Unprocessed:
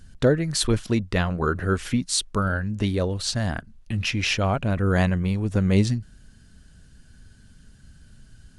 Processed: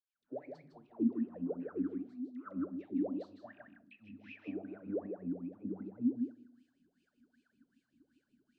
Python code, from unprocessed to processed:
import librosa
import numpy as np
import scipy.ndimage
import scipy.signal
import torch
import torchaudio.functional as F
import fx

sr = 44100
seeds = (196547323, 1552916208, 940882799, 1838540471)

p1 = fx.fade_in_head(x, sr, length_s=0.59)
p2 = fx.hum_notches(p1, sr, base_hz=50, count=7)
p3 = fx.env_lowpass_down(p2, sr, base_hz=590.0, full_db=-18.5)
p4 = fx.graphic_eq(p3, sr, hz=(250, 500, 1000, 2000, 4000, 8000), db=(10, -5, -4, -8, 5, 8))
p5 = fx.hpss(p4, sr, part='percussive', gain_db=-7)
p6 = fx.low_shelf(p5, sr, hz=150.0, db=-3.5)
p7 = 10.0 ** (-17.5 / 20.0) * np.tanh(p6 / 10.0 ** (-17.5 / 20.0))
p8 = p6 + (p7 * librosa.db_to_amplitude(-4.5))
p9 = fx.dispersion(p8, sr, late='lows', ms=100.0, hz=780.0)
p10 = fx.wah_lfo(p9, sr, hz=2.6, low_hz=250.0, high_hz=2600.0, q=21.0)
p11 = p10 + fx.echo_single(p10, sr, ms=157, db=-5.5, dry=0)
y = fx.room_shoebox(p11, sr, seeds[0], volume_m3=850.0, walls='furnished', distance_m=0.41)